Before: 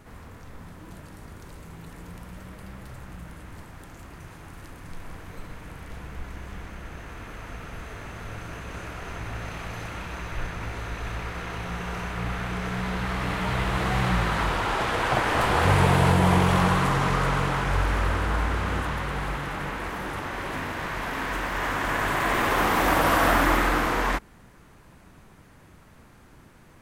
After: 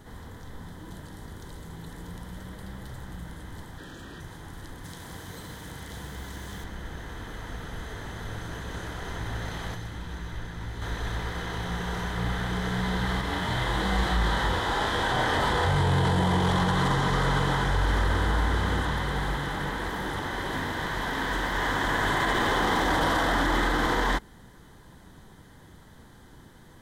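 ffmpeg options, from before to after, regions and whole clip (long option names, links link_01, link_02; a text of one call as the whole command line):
ffmpeg -i in.wav -filter_complex "[0:a]asettb=1/sr,asplit=3[link_01][link_02][link_03];[link_01]atrim=end=3.784[link_04];[link_02]atrim=start=3.78:end=4.21,asetpts=PTS-STARTPTS,afade=type=in:duration=0.004:curve=qsin,afade=type=out:start_time=0.426:duration=0.004:curve=qsin,equalizer=frequency=860:width=1:gain=-12.5,asplit=2[link_05][link_06];[link_06]highpass=frequency=720:poles=1,volume=23dB,asoftclip=type=tanh:threshold=-32.5dB[link_07];[link_05][link_07]amix=inputs=2:normalize=0,lowpass=frequency=1500:poles=1,volume=-6dB,asuperstop=centerf=2100:order=20:qfactor=6[link_08];[link_03]atrim=start=4.206[link_09];[link_04][link_08]acrossfade=duration=0.004:curve1=hsin:curve2=qsin[link_10];[link_10][link_09]acrossfade=duration=0.004:curve1=qsin:curve2=hsin,asettb=1/sr,asplit=3[link_11][link_12][link_13];[link_11]atrim=end=4.844[link_14];[link_12]atrim=start=4.84:end=6.64,asetpts=PTS-STARTPTS,afade=type=in:duration=0.004:curve=qsin,afade=type=out:start_time=1.796:duration=0.004:curve=qsin,highpass=63,highshelf=frequency=4400:gain=10.5,acrusher=bits=5:mode=log:mix=0:aa=0.000001[link_15];[link_13]atrim=start=6.636[link_16];[link_14][link_15]acrossfade=duration=0.004:curve1=hsin:curve2=qsin[link_17];[link_17][link_16]acrossfade=duration=0.004:curve1=qsin:curve2=hsin,asettb=1/sr,asplit=3[link_18][link_19][link_20];[link_18]atrim=end=9.744[link_21];[link_19]atrim=start=9.74:end=10.82,asetpts=PTS-STARTPTS,afade=type=in:duration=0.004:curve=qsin,afade=type=out:start_time=1.076:duration=0.004:curve=qsin,acrossover=split=110|370|840[link_22][link_23][link_24][link_25];[link_22]acompressor=threshold=-38dB:ratio=3[link_26];[link_23]acompressor=threshold=-44dB:ratio=3[link_27];[link_24]acompressor=threshold=-57dB:ratio=3[link_28];[link_25]acompressor=threshold=-46dB:ratio=3[link_29];[link_26][link_27][link_28][link_29]amix=inputs=4:normalize=0,asplit=2[link_30][link_31];[link_31]adelay=17,volume=-12dB[link_32];[link_30][link_32]amix=inputs=2:normalize=0,atrim=end_sample=47628[link_33];[link_20]atrim=start=10.816[link_34];[link_21][link_33]acrossfade=duration=0.004:curve1=hsin:curve2=qsin[link_35];[link_35][link_34]acrossfade=duration=0.004:curve1=qsin:curve2=hsin,asettb=1/sr,asplit=3[link_36][link_37][link_38];[link_36]atrim=end=13.214[link_39];[link_37]atrim=start=13.21:end=16.05,asetpts=PTS-STARTPTS,afade=type=in:duration=0.004:curve=qsin,afade=type=out:start_time=2.836:duration=0.004:curve=qsin,flanger=delay=20:depth=3.4:speed=1.2,asplit=2[link_40][link_41];[link_41]adelay=35,volume=-3dB[link_42];[link_40][link_42]amix=inputs=2:normalize=0,atrim=end_sample=125244[link_43];[link_38]atrim=start=16.046[link_44];[link_39][link_43]acrossfade=duration=0.004:curve1=hsin:curve2=qsin[link_45];[link_45][link_44]acrossfade=duration=0.004:curve1=qsin:curve2=hsin,acrossover=split=8700[link_46][link_47];[link_47]acompressor=threshold=-53dB:ratio=4:attack=1:release=60[link_48];[link_46][link_48]amix=inputs=2:normalize=0,superequalizer=8b=0.708:10b=0.631:12b=0.316:13b=1.58,alimiter=limit=-17.5dB:level=0:latency=1:release=16,volume=1.5dB" out.wav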